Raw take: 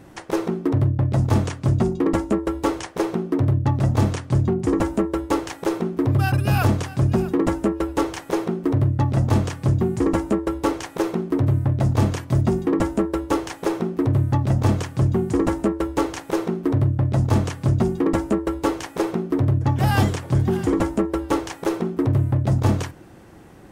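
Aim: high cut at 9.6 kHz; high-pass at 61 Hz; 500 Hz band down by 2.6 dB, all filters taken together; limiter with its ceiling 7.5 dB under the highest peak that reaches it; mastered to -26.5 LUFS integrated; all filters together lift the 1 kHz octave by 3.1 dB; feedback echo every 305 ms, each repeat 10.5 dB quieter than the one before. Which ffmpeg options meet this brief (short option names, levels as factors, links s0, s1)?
-af "highpass=61,lowpass=9600,equalizer=f=500:t=o:g=-5,equalizer=f=1000:t=o:g=5.5,alimiter=limit=0.211:level=0:latency=1,aecho=1:1:305|610|915:0.299|0.0896|0.0269,volume=0.75"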